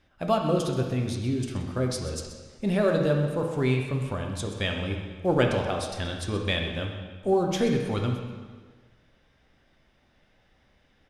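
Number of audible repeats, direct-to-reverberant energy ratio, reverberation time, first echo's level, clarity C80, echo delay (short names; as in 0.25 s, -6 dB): 1, 1.5 dB, 1.5 s, -13.0 dB, 5.5 dB, 0.128 s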